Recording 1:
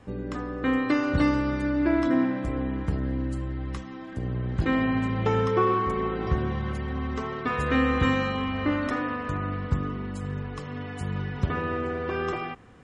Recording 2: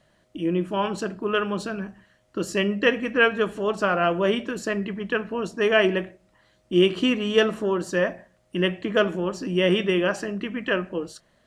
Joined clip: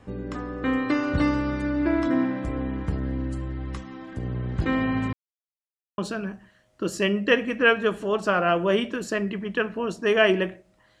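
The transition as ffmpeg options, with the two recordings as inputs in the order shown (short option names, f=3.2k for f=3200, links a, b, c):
-filter_complex "[0:a]apad=whole_dur=11,atrim=end=11,asplit=2[a][b];[a]atrim=end=5.13,asetpts=PTS-STARTPTS,afade=t=out:st=5.126:d=0.004:c=hsin[c];[b]atrim=start=5.13:end=5.98,asetpts=PTS-STARTPTS,volume=0[d];[1:a]atrim=start=1.53:end=6.55,asetpts=PTS-STARTPTS,afade=t=in:d=0.004:c=hsin[e];[c][d][e]concat=n=3:v=0:a=1"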